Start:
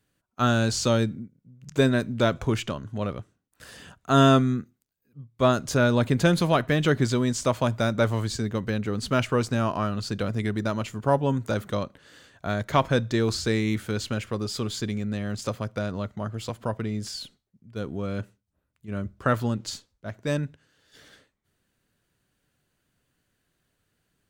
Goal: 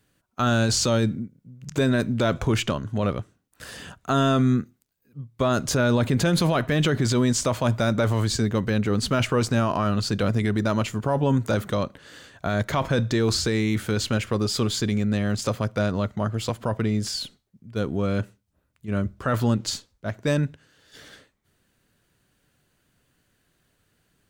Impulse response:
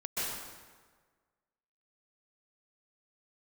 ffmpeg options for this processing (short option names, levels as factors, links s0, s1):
-af "alimiter=limit=0.106:level=0:latency=1:release=17,volume=2"